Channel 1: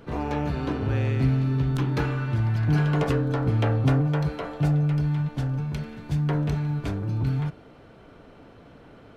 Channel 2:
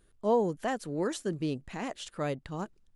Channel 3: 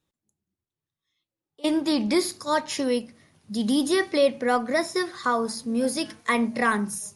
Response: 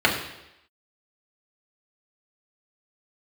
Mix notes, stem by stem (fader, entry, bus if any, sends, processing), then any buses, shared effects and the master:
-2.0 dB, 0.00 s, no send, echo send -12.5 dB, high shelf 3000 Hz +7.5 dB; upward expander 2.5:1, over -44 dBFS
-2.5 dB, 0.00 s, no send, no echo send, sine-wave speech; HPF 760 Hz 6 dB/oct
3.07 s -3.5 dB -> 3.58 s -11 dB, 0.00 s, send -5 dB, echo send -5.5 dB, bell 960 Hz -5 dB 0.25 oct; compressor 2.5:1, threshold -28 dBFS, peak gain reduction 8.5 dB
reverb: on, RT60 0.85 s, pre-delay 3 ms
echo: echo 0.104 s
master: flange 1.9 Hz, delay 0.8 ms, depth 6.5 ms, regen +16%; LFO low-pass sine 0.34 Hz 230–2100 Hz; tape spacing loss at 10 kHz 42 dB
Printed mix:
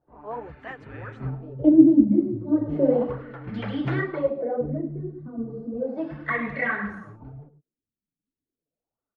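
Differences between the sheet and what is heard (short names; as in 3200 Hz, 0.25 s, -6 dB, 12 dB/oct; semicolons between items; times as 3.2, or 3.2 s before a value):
stem 2: missing sine-wave speech; master: missing tape spacing loss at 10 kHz 42 dB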